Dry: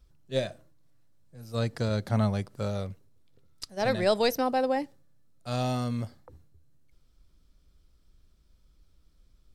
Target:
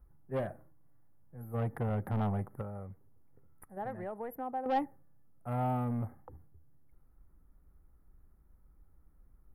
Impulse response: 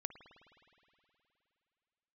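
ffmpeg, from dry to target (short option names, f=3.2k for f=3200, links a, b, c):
-filter_complex "[0:a]asettb=1/sr,asplit=3[a][b][c];[a]atrim=end=2.614[d];[b]atrim=start=2.61:end=4.66,asetpts=PTS-STARTPTS,afade=t=in:d=0.004:c=qsin,afade=t=out:st=2.046:d=0.004:c=qsin,acompressor=threshold=-41dB:ratio=3[e];[c]atrim=start=4.656[f];[d][e]acrossfade=d=0.004:c1=hsin:c2=qsin[g];[g][f]acrossfade=d=0.004:c1=qsin:c2=hsin,asuperstop=centerf=4700:order=12:qfactor=0.57,equalizer=f=640:w=2.3:g=-4.5,asoftclip=type=tanh:threshold=-28.5dB,equalizer=f=800:t=o:w=0.33:g=9,equalizer=f=1.6k:t=o:w=0.33:g=-4,equalizer=f=3.15k:t=o:w=0.33:g=4,equalizer=f=5k:t=o:w=0.33:g=4"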